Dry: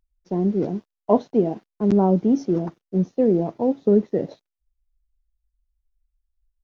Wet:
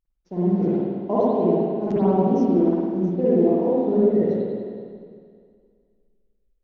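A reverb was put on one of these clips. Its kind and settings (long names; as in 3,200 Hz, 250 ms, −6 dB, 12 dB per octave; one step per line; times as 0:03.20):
spring reverb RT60 2.1 s, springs 51/57 ms, chirp 45 ms, DRR −9.5 dB
level −8.5 dB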